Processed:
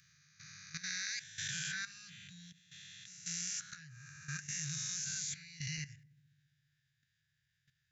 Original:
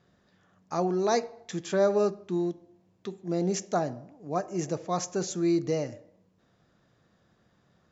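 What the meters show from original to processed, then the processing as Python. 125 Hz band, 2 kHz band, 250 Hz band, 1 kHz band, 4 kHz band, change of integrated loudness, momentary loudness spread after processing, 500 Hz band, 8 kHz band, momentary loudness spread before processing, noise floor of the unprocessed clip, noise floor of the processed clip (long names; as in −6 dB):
−11.0 dB, +0.5 dB, −24.0 dB, −28.5 dB, +1.0 dB, −10.5 dB, 16 LU, below −40 dB, can't be measured, 13 LU, −68 dBFS, −82 dBFS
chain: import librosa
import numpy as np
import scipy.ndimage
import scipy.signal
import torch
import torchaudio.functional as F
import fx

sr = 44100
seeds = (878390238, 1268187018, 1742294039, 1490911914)

y = fx.spec_swells(x, sr, rise_s=1.56)
y = scipy.signal.sosfilt(scipy.signal.cheby1(5, 1.0, [150.0, 1600.0], 'bandstop', fs=sr, output='sos'), y)
y = fx.low_shelf(y, sr, hz=120.0, db=-11.5)
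y = fx.level_steps(y, sr, step_db=14)
y = fx.echo_filtered(y, sr, ms=68, feedback_pct=79, hz=970.0, wet_db=-19.5)
y = y * librosa.db_to_amplitude(2.0)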